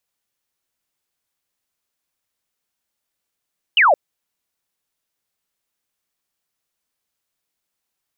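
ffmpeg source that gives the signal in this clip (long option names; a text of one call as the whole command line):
ffmpeg -f lavfi -i "aevalsrc='0.335*clip(t/0.002,0,1)*clip((0.17-t)/0.002,0,1)*sin(2*PI*3100*0.17/log(530/3100)*(exp(log(530/3100)*t/0.17)-1))':duration=0.17:sample_rate=44100" out.wav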